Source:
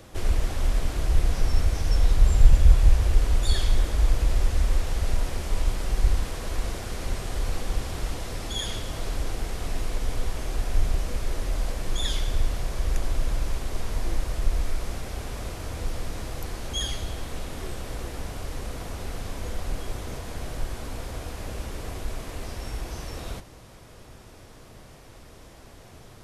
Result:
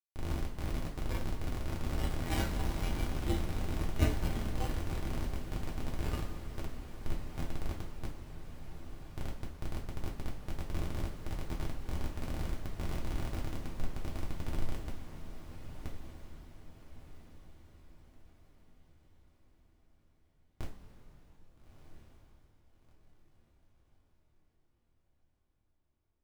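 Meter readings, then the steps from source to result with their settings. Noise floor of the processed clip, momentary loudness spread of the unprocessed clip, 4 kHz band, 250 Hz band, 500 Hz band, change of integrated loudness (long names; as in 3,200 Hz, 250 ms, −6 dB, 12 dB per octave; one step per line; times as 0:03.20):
−74 dBFS, 15 LU, −14.5 dB, −3.5 dB, −8.5 dB, −10.5 dB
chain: low-pass filter 1,400 Hz 24 dB per octave
comparator with hysteresis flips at −20 dBFS
feedback delay with all-pass diffusion 1,312 ms, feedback 43%, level −9.5 dB
noise reduction from a noise print of the clip's start 13 dB
coupled-rooms reverb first 0.3 s, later 4.5 s, from −18 dB, DRR −2.5 dB
level +1 dB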